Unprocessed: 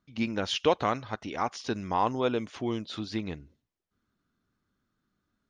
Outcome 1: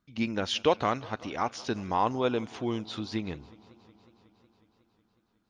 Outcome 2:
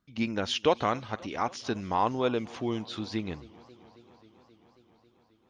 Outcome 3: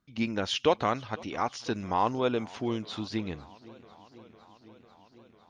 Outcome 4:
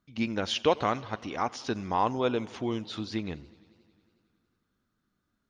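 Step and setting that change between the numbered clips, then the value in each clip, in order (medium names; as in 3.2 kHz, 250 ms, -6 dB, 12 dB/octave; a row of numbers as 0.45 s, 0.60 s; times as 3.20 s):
modulated delay, time: 183 ms, 269 ms, 500 ms, 91 ms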